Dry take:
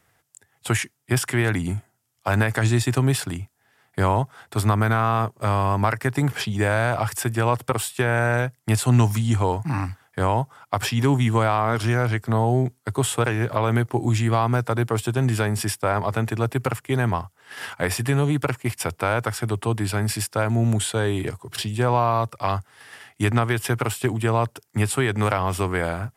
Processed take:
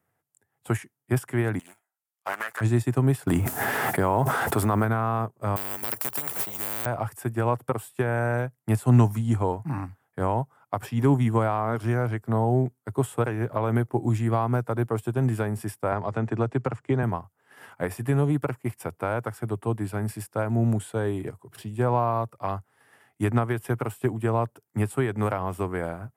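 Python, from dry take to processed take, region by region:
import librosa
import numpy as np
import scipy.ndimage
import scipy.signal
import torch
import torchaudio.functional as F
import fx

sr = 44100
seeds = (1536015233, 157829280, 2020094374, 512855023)

y = fx.chain(x, sr, fx.highpass(hz=1100.0, slope=12),
    fx.leveller(passes=2),
    fx.doppler_dist(depth_ms=0.34), at=(1.59, 2.61))
y = fx.chain(y, sr, fx.law_mismatch(coded='mu'),
    fx.peak_eq(hz=110.0, db=-6.0, octaves=1.9),
    fx.env_flatten(amount_pct=100), at=(3.27, 4.85))
y = fx.chain(y, sr, fx.resample_bad(factor=2, down='none', up='zero_stuff'),
    fx.spectral_comp(ratio=10.0), at=(5.56, 6.86))
y = fx.chain(y, sr, fx.lowpass(hz=7300.0, slope=24),
    fx.band_squash(depth_pct=100), at=(15.92, 17.03))
y = scipy.signal.sosfilt(scipy.signal.butter(2, 100.0, 'highpass', fs=sr, output='sos'), y)
y = fx.peak_eq(y, sr, hz=4300.0, db=-13.5, octaves=2.4)
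y = fx.upward_expand(y, sr, threshold_db=-34.0, expansion=1.5)
y = y * librosa.db_to_amplitude(1.5)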